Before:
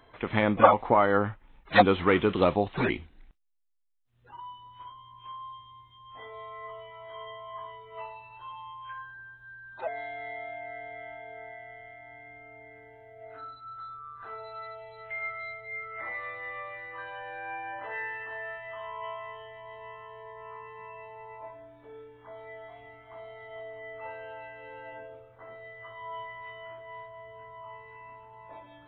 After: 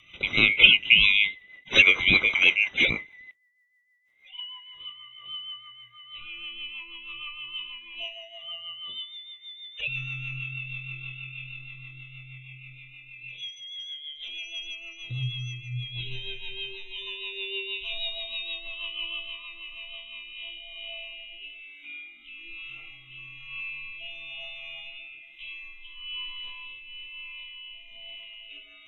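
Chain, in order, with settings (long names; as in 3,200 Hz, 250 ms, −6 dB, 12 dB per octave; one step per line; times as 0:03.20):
neighbouring bands swapped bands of 2,000 Hz
rotating-speaker cabinet horn 6.3 Hz, later 1.1 Hz, at 0:19.83
level +6.5 dB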